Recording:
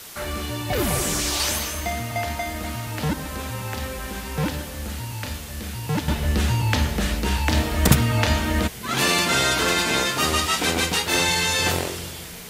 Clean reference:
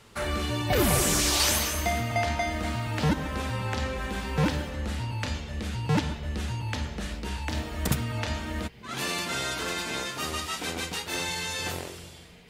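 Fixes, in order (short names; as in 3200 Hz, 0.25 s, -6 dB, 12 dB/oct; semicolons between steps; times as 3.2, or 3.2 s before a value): denoiser 6 dB, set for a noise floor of -32 dBFS; gain correction -10.5 dB, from 6.08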